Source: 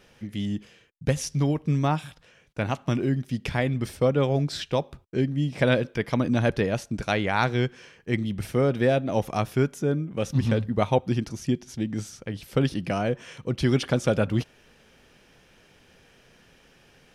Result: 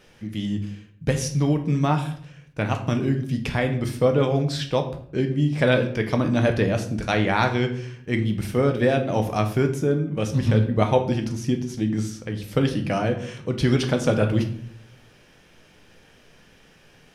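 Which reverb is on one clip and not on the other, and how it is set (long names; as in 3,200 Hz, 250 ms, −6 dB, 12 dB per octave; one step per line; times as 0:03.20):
rectangular room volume 94 cubic metres, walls mixed, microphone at 0.47 metres
level +1.5 dB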